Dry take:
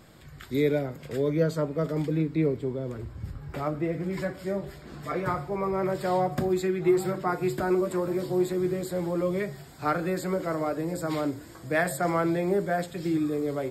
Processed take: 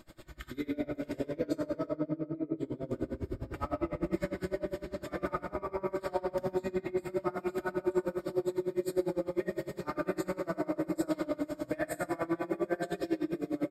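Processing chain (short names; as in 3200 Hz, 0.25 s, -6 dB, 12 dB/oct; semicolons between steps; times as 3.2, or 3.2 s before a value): 1.86–2.57 spectral contrast raised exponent 1.6; comb 3.3 ms, depth 55%; compressor, threshold -31 dBFS, peak gain reduction 15 dB; shoebox room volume 170 m³, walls hard, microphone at 0.61 m; dB-linear tremolo 9.9 Hz, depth 25 dB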